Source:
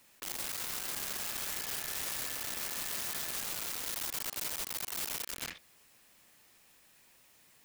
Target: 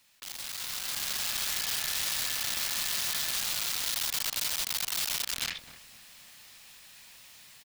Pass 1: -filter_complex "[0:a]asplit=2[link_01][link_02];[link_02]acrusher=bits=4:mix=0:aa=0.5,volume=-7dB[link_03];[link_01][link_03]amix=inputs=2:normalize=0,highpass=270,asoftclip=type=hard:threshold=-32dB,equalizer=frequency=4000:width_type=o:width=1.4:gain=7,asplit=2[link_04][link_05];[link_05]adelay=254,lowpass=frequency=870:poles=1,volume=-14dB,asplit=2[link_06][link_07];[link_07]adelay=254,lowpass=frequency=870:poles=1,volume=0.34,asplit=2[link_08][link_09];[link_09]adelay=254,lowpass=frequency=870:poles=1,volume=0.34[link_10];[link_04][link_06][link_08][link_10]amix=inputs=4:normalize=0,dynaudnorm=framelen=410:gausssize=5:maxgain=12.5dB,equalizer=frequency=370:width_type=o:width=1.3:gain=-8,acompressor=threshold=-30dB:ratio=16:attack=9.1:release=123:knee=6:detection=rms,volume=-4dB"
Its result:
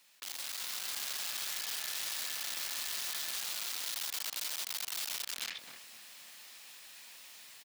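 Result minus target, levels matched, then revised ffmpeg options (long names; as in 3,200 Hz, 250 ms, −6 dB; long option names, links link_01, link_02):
downward compressor: peak gain reduction +7 dB; 250 Hz band −4.0 dB
-filter_complex "[0:a]asplit=2[link_01][link_02];[link_02]acrusher=bits=4:mix=0:aa=0.5,volume=-7dB[link_03];[link_01][link_03]amix=inputs=2:normalize=0,asoftclip=type=hard:threshold=-32dB,equalizer=frequency=4000:width_type=o:width=1.4:gain=7,asplit=2[link_04][link_05];[link_05]adelay=254,lowpass=frequency=870:poles=1,volume=-14dB,asplit=2[link_06][link_07];[link_07]adelay=254,lowpass=frequency=870:poles=1,volume=0.34,asplit=2[link_08][link_09];[link_09]adelay=254,lowpass=frequency=870:poles=1,volume=0.34[link_10];[link_04][link_06][link_08][link_10]amix=inputs=4:normalize=0,dynaudnorm=framelen=410:gausssize=5:maxgain=12.5dB,equalizer=frequency=370:width_type=o:width=1.3:gain=-8,acompressor=threshold=-22.5dB:ratio=16:attack=9.1:release=123:knee=6:detection=rms,volume=-4dB"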